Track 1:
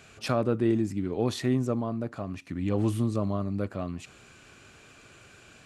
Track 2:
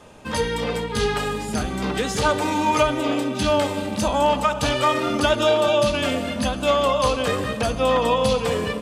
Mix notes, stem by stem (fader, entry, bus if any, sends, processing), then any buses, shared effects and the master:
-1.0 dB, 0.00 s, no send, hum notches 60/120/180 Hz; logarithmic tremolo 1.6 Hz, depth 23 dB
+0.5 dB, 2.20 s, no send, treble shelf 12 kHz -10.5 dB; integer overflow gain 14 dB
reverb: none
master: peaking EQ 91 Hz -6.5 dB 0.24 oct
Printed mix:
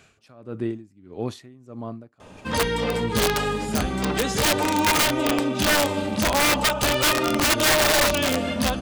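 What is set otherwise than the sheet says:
stem 1: missing hum notches 60/120/180 Hz; master: missing peaking EQ 91 Hz -6.5 dB 0.24 oct

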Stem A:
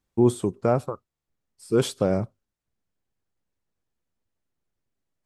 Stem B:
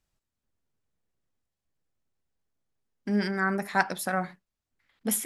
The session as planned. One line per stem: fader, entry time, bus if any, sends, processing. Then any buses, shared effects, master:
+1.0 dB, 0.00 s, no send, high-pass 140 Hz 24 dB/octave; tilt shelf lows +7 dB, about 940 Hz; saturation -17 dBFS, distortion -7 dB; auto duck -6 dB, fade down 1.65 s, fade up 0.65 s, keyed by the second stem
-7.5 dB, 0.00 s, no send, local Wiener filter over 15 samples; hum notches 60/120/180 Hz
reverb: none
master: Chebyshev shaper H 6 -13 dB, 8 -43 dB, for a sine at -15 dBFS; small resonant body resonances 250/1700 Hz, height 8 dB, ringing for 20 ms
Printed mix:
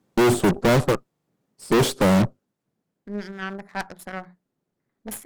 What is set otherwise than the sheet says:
stem A +1.0 dB -> +12.5 dB; master: missing small resonant body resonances 250/1700 Hz, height 8 dB, ringing for 20 ms

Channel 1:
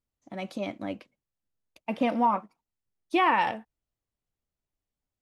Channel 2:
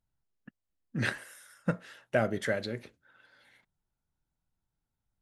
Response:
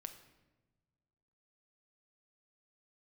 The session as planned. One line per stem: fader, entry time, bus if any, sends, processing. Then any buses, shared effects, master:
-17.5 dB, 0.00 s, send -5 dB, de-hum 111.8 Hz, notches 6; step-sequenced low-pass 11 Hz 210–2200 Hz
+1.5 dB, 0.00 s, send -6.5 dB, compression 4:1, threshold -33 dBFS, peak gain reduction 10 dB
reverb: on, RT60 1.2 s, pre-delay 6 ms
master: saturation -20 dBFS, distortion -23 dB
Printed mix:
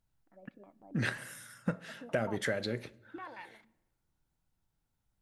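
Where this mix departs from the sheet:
stem 1 -17.5 dB -> -29.0 dB; master: missing saturation -20 dBFS, distortion -23 dB

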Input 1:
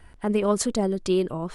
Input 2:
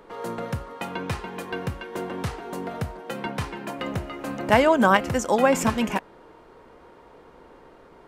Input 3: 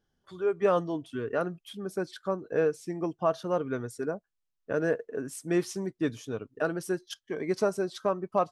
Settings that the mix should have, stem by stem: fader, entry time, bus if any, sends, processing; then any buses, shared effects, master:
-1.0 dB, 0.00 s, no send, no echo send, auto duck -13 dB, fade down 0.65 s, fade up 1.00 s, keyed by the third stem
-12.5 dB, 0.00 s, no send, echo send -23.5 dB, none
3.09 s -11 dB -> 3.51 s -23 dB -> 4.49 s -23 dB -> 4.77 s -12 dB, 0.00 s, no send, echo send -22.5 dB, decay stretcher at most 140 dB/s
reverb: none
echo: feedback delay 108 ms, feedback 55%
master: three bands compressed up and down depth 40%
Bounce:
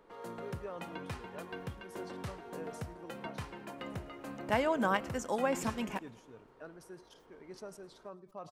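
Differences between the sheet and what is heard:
stem 1: muted; stem 3 -11.0 dB -> -19.5 dB; master: missing three bands compressed up and down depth 40%

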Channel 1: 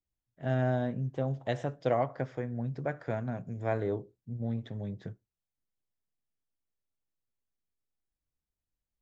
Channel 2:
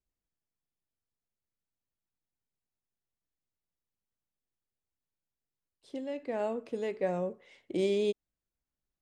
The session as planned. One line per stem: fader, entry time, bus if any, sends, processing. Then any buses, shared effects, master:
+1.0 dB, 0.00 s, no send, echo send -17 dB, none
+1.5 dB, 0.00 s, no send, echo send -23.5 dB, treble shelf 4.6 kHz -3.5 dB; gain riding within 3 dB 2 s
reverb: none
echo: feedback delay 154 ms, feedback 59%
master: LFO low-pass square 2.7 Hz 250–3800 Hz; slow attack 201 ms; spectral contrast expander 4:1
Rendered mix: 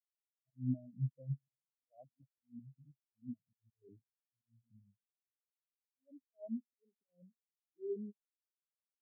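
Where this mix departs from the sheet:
stem 1 +1.0 dB -> -6.0 dB; stem 2 +1.5 dB -> -5.0 dB

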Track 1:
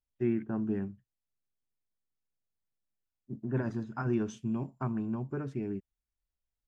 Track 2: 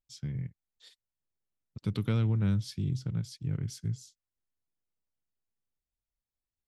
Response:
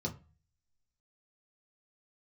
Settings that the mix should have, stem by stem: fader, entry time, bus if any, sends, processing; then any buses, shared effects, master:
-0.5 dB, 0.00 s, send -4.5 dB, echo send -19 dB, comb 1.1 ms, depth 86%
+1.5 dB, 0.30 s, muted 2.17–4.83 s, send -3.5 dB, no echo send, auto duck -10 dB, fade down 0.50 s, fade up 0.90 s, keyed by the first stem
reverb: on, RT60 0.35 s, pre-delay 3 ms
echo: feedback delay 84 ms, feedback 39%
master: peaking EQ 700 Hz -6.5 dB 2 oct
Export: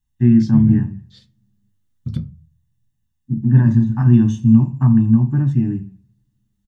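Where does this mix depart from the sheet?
stem 1 -0.5 dB -> +9.0 dB; stem 2 +1.5 dB -> +10.0 dB

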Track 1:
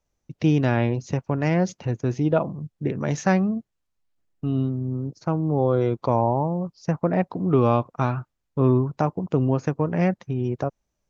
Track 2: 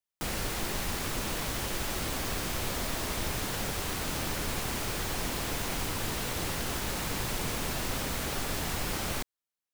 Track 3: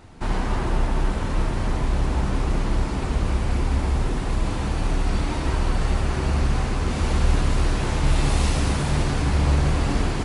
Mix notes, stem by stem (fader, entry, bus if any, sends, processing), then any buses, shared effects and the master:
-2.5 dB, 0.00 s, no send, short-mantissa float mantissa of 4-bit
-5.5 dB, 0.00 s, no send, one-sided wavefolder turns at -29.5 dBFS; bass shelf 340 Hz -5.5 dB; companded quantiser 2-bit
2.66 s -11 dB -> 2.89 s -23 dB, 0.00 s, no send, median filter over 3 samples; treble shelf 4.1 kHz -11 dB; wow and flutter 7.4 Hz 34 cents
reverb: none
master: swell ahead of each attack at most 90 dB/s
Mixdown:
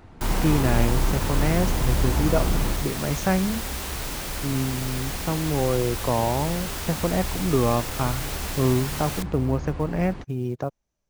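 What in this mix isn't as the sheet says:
stem 3 -11.0 dB -> -0.5 dB; master: missing swell ahead of each attack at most 90 dB/s

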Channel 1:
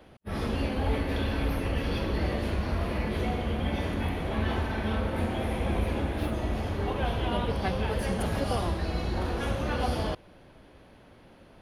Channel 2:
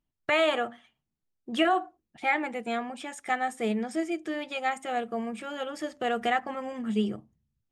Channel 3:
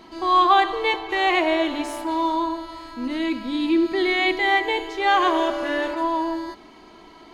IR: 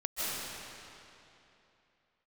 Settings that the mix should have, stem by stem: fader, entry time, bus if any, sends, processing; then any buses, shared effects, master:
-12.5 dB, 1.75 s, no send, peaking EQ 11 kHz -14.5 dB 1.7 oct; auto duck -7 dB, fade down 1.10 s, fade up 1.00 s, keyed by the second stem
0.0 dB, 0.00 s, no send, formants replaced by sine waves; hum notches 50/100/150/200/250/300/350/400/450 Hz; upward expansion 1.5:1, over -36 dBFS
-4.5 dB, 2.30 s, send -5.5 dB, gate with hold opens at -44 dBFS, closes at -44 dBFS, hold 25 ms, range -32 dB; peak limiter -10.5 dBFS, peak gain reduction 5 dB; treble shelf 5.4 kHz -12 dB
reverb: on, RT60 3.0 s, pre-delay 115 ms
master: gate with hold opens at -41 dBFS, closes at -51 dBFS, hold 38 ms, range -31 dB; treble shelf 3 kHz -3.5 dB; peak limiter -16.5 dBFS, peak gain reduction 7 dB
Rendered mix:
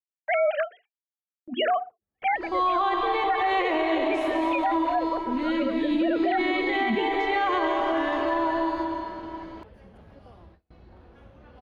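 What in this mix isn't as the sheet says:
stem 1 -12.5 dB -> -21.0 dB; stem 2 0.0 dB -> +11.5 dB

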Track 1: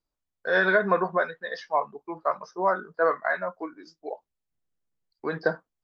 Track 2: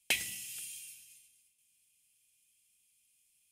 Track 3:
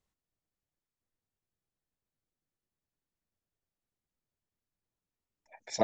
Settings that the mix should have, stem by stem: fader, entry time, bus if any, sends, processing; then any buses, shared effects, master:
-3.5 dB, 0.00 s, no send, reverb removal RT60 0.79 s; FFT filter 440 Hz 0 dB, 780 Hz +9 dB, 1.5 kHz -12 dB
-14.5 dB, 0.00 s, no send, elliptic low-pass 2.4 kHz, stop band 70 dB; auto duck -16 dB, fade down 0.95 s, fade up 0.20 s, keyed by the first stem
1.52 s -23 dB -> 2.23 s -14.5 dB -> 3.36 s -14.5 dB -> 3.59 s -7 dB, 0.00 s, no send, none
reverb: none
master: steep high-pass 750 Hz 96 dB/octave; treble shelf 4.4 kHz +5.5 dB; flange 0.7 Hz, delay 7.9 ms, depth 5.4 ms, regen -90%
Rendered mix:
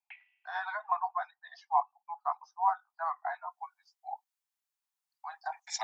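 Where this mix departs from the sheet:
stem 3 -23.0 dB -> -16.5 dB; master: missing flange 0.7 Hz, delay 7.9 ms, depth 5.4 ms, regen -90%

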